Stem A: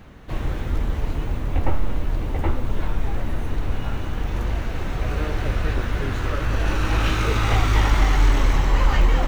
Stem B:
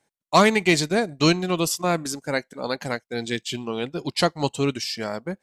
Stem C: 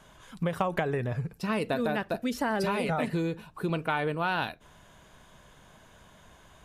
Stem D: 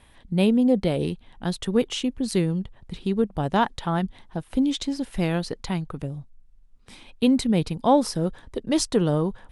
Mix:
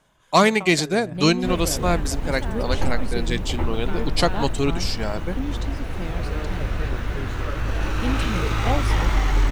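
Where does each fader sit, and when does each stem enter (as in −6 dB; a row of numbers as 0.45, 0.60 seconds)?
−2.5, +0.5, −8.0, −9.0 decibels; 1.15, 0.00, 0.00, 0.80 seconds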